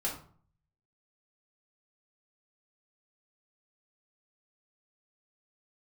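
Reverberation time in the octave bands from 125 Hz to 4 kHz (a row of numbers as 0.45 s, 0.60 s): 0.90 s, 0.60 s, 0.50 s, 0.50 s, 0.35 s, 0.30 s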